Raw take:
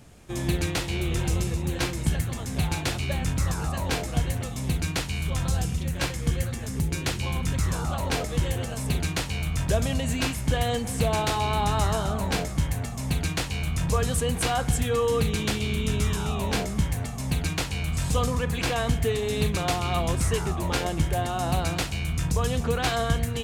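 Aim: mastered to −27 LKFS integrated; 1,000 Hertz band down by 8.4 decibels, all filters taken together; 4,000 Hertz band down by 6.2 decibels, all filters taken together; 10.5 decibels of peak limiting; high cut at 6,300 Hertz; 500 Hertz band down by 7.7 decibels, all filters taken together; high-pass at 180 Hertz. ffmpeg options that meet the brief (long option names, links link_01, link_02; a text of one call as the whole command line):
ffmpeg -i in.wav -af "highpass=180,lowpass=6300,equalizer=frequency=500:width_type=o:gain=-7,equalizer=frequency=1000:width_type=o:gain=-8.5,equalizer=frequency=4000:width_type=o:gain=-7,volume=10dB,alimiter=limit=-17.5dB:level=0:latency=1" out.wav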